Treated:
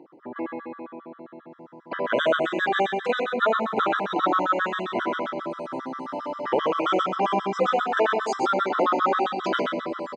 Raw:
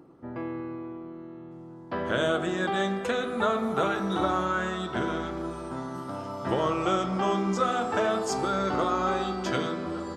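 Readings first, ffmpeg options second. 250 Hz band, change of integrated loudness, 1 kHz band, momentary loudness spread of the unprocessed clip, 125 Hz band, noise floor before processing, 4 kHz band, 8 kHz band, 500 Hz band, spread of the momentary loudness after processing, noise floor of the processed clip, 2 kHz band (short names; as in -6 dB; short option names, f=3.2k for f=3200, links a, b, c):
-1.0 dB, +3.5 dB, +5.0 dB, 12 LU, -7.0 dB, -44 dBFS, +2.5 dB, n/a, +3.5 dB, 12 LU, -50 dBFS, +5.0 dB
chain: -af "highpass=330,lowpass=3.7k,aecho=1:1:126:0.447,afftfilt=real='re*gt(sin(2*PI*7.5*pts/sr)*(1-2*mod(floor(b*sr/1024/1000),2)),0)':imag='im*gt(sin(2*PI*7.5*pts/sr)*(1-2*mod(floor(b*sr/1024/1000),2)),0)':win_size=1024:overlap=0.75,volume=7.5dB"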